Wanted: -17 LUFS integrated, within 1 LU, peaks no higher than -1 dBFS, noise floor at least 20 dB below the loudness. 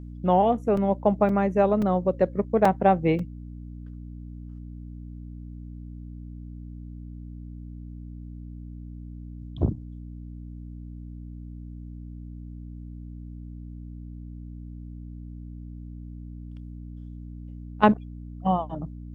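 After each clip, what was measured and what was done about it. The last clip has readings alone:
dropouts 5; longest dropout 3.7 ms; hum 60 Hz; highest harmonic 300 Hz; hum level -36 dBFS; loudness -24.0 LUFS; peak level -4.0 dBFS; loudness target -17.0 LUFS
-> interpolate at 0.77/1.29/1.82/2.65/3.19 s, 3.7 ms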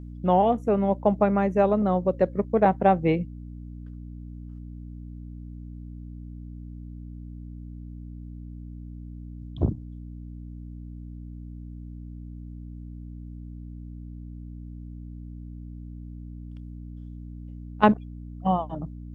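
dropouts 0; hum 60 Hz; highest harmonic 300 Hz; hum level -36 dBFS
-> de-hum 60 Hz, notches 5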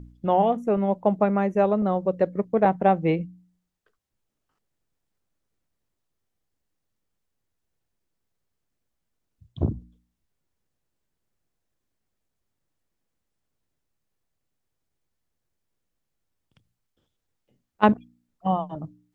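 hum not found; loudness -23.5 LUFS; peak level -4.0 dBFS; loudness target -17.0 LUFS
-> trim +6.5 dB; peak limiter -1 dBFS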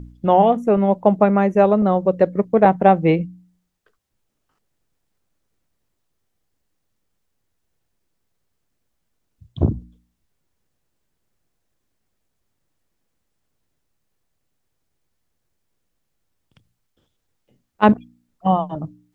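loudness -17.5 LUFS; peak level -1.0 dBFS; noise floor -74 dBFS

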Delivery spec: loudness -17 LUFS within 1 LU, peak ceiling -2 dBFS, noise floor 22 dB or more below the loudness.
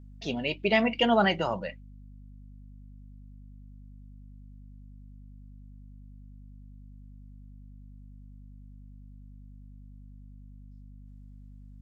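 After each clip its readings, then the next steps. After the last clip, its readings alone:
hum 50 Hz; highest harmonic 250 Hz; hum level -45 dBFS; loudness -26.5 LUFS; peak level -9.5 dBFS; loudness target -17.0 LUFS
-> hum notches 50/100/150/200/250 Hz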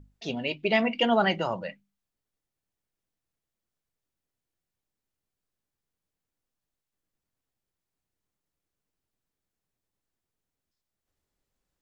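hum not found; loudness -26.5 LUFS; peak level -9.0 dBFS; loudness target -17.0 LUFS
-> trim +9.5 dB; peak limiter -2 dBFS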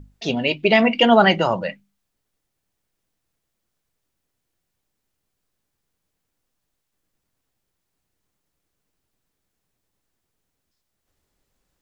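loudness -17.5 LUFS; peak level -2.0 dBFS; noise floor -78 dBFS

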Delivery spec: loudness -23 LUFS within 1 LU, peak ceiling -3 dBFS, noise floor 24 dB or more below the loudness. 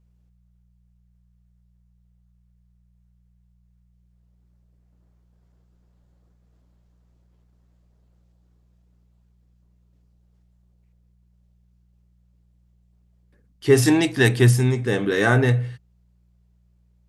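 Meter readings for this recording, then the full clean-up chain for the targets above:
hum 60 Hz; highest harmonic 180 Hz; hum level -56 dBFS; loudness -19.0 LUFS; peak level -3.5 dBFS; loudness target -23.0 LUFS
-> de-hum 60 Hz, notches 3; trim -4 dB

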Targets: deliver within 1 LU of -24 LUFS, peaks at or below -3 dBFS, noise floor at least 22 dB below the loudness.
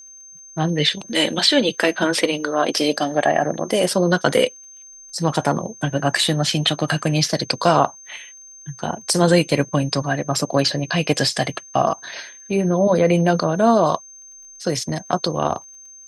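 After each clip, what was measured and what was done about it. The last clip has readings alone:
tick rate 26 per s; steady tone 6.3 kHz; tone level -40 dBFS; loudness -19.5 LUFS; peak level -1.5 dBFS; loudness target -24.0 LUFS
-> de-click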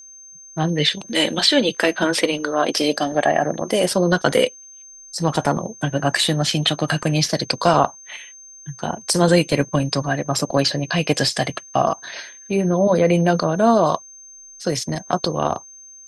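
tick rate 0 per s; steady tone 6.3 kHz; tone level -40 dBFS
-> band-stop 6.3 kHz, Q 30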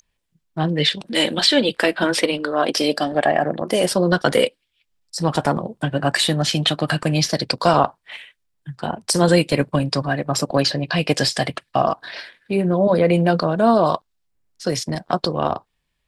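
steady tone not found; loudness -19.5 LUFS; peak level -2.0 dBFS; loudness target -24.0 LUFS
-> trim -4.5 dB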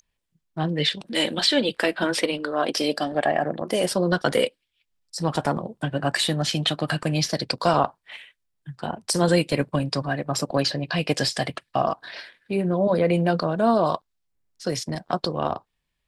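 loudness -24.0 LUFS; peak level -6.5 dBFS; noise floor -77 dBFS

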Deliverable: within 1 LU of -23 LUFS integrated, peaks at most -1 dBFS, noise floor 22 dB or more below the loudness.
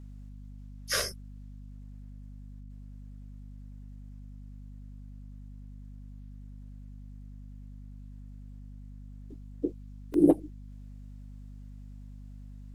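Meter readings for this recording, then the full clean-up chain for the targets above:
dropouts 2; longest dropout 2.0 ms; hum 50 Hz; highest harmonic 250 Hz; hum level -43 dBFS; loudness -28.5 LUFS; peak level -9.0 dBFS; loudness target -23.0 LUFS
-> interpolate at 1.00/10.14 s, 2 ms; hum notches 50/100/150/200/250 Hz; trim +5.5 dB

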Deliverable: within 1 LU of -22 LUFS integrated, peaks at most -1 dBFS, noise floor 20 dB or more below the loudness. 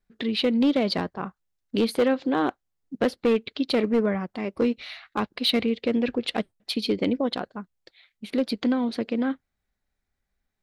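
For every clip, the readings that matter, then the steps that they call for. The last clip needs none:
clipped samples 0.9%; clipping level -15.5 dBFS; loudness -26.0 LUFS; peak level -15.5 dBFS; loudness target -22.0 LUFS
-> clip repair -15.5 dBFS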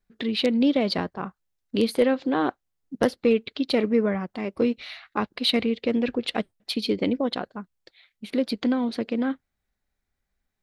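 clipped samples 0.0%; loudness -25.5 LUFS; peak level -6.5 dBFS; loudness target -22.0 LUFS
-> trim +3.5 dB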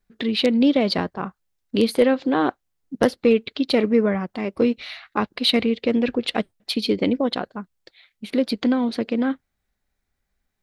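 loudness -22.0 LUFS; peak level -3.0 dBFS; noise floor -78 dBFS

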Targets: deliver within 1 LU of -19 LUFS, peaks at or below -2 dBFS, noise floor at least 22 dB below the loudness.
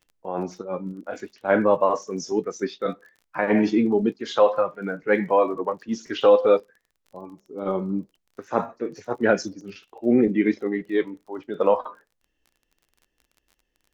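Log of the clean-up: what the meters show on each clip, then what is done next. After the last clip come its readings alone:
tick rate 30 per s; loudness -23.5 LUFS; peak level -5.5 dBFS; loudness target -19.0 LUFS
-> de-click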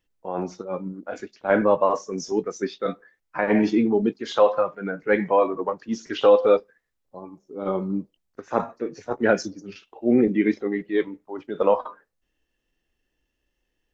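tick rate 0.072 per s; loudness -23.5 LUFS; peak level -5.5 dBFS; loudness target -19.0 LUFS
-> trim +4.5 dB; peak limiter -2 dBFS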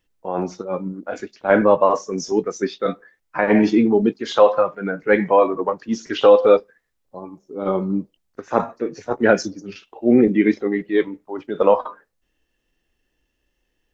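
loudness -19.0 LUFS; peak level -2.0 dBFS; noise floor -73 dBFS

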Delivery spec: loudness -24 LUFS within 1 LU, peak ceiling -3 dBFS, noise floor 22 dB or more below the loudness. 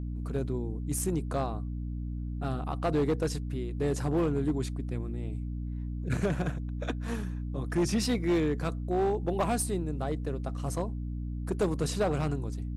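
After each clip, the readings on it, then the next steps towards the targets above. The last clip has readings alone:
clipped samples 1.6%; clipping level -21.5 dBFS; hum 60 Hz; highest harmonic 300 Hz; hum level -33 dBFS; loudness -31.5 LUFS; peak level -21.5 dBFS; loudness target -24.0 LUFS
-> clip repair -21.5 dBFS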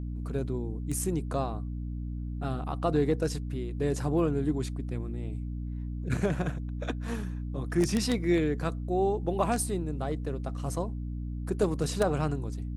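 clipped samples 0.0%; hum 60 Hz; highest harmonic 300 Hz; hum level -32 dBFS
-> hum notches 60/120/180/240/300 Hz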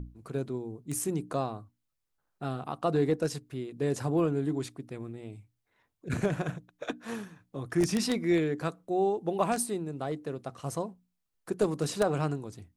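hum not found; loudness -32.0 LUFS; peak level -12.0 dBFS; loudness target -24.0 LUFS
-> trim +8 dB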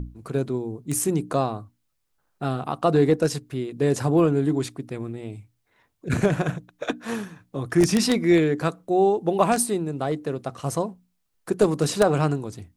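loudness -24.0 LUFS; peak level -4.0 dBFS; noise floor -73 dBFS

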